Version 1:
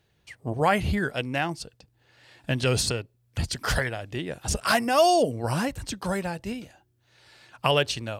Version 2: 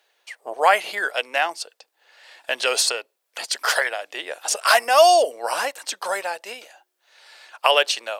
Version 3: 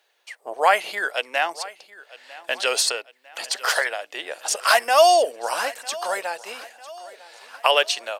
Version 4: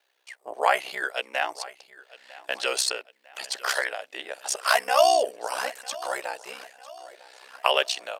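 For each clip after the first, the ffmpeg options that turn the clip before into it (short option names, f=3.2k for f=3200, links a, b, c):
-af "highpass=f=540:w=0.5412,highpass=f=540:w=1.3066,volume=7dB"
-af "aecho=1:1:951|1902|2853|3804:0.106|0.0519|0.0254|0.0125,volume=-1dB"
-af "aeval=exprs='val(0)*sin(2*PI*32*n/s)':c=same,volume=-1.5dB"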